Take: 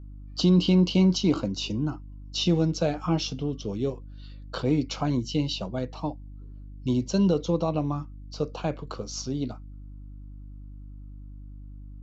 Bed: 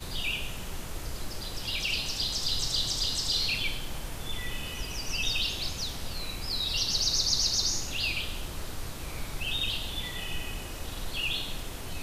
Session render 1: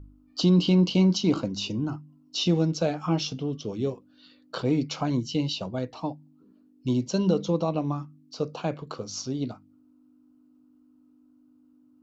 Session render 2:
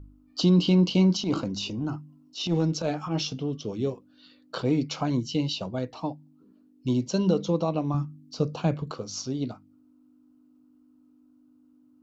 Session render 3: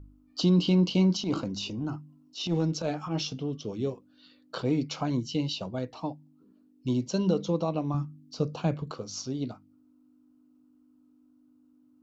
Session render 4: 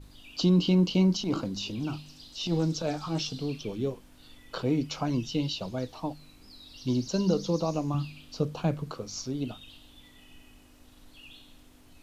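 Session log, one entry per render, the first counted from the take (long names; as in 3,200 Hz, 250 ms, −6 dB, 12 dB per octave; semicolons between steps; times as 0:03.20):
hum removal 50 Hz, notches 4
0:01.15–0:03.22: transient designer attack −11 dB, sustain +2 dB; 0:07.94–0:08.91: bass and treble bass +9 dB, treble +2 dB
level −2.5 dB
mix in bed −19.5 dB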